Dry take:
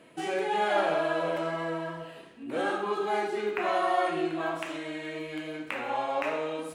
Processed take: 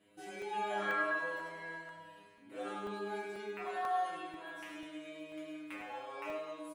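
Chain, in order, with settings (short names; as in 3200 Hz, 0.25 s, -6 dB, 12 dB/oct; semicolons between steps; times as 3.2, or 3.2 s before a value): low shelf 150 Hz +5 dB; spectral gain 0.81–1.15, 1000–2400 Hz +10 dB; high shelf 9800 Hz +6.5 dB; metallic resonator 100 Hz, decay 0.71 s, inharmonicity 0.002; feedback echo 0.103 s, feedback 53%, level -9 dB; crackling interface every 0.49 s, samples 64, zero, from 0.42; gain +1 dB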